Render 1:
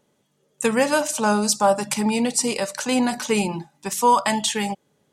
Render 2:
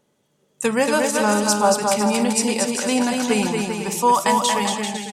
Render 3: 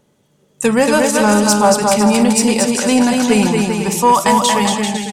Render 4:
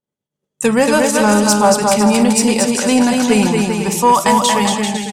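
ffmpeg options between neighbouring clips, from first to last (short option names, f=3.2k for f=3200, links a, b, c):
-af "aecho=1:1:230|391|503.7|582.6|637.8:0.631|0.398|0.251|0.158|0.1"
-af "lowshelf=f=170:g=8.5,acontrast=47"
-af "agate=range=-33dB:threshold=-42dB:ratio=3:detection=peak"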